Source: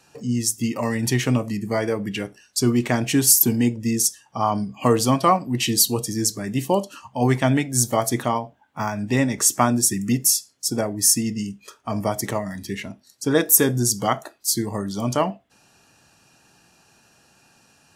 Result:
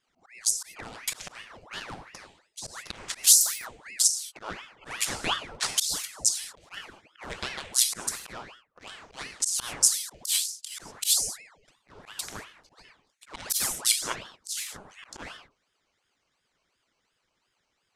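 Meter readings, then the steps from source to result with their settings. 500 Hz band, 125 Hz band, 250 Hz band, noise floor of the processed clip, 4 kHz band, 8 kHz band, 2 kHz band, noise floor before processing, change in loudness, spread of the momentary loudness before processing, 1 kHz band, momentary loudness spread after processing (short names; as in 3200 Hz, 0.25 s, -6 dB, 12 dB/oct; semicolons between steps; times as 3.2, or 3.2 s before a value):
-22.5 dB, -27.0 dB, -28.0 dB, -77 dBFS, -1.5 dB, -3.5 dB, -7.0 dB, -58 dBFS, -4.5 dB, 12 LU, -16.0 dB, 20 LU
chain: Wiener smoothing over 25 samples; non-linear reverb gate 0.25 s falling, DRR 4 dB; auto swell 0.127 s; weighting filter ITU-R 468; ring modulator with a swept carrier 1300 Hz, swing 85%, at 2.8 Hz; gain -8.5 dB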